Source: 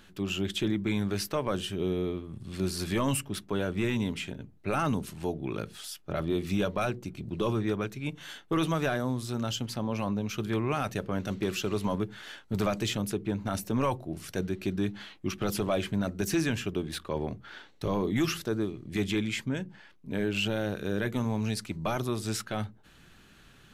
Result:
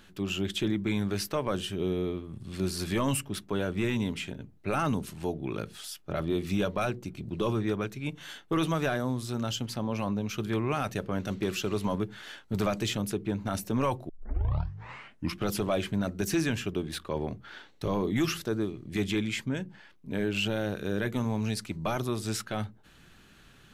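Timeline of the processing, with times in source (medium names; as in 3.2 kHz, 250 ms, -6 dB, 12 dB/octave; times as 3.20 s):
14.09 s: tape start 1.35 s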